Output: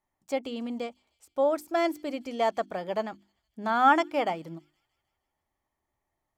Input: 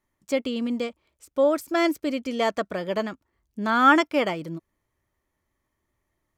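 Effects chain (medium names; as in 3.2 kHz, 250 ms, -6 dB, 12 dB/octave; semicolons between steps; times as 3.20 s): peaking EQ 780 Hz +13 dB 0.42 oct; hum notches 50/100/150/200/250/300/350 Hz; on a send: feedback echo behind a high-pass 156 ms, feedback 60%, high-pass 4.1 kHz, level -22 dB; on the sum: trim -7 dB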